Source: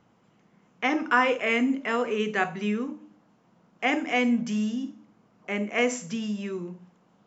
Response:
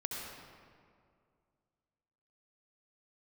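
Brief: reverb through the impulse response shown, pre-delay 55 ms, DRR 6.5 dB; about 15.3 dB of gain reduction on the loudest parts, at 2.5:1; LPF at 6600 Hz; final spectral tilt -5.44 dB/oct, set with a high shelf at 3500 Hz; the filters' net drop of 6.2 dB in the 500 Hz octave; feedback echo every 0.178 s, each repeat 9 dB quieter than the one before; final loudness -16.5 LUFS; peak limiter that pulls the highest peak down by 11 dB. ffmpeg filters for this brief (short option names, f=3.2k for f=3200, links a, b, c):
-filter_complex "[0:a]lowpass=6.6k,equalizer=f=500:t=o:g=-7,highshelf=f=3.5k:g=-5,acompressor=threshold=-42dB:ratio=2.5,alimiter=level_in=11.5dB:limit=-24dB:level=0:latency=1,volume=-11.5dB,aecho=1:1:178|356|534|712:0.355|0.124|0.0435|0.0152,asplit=2[a][b];[1:a]atrim=start_sample=2205,adelay=55[c];[b][c]afir=irnorm=-1:irlink=0,volume=-8.5dB[d];[a][d]amix=inputs=2:normalize=0,volume=27dB"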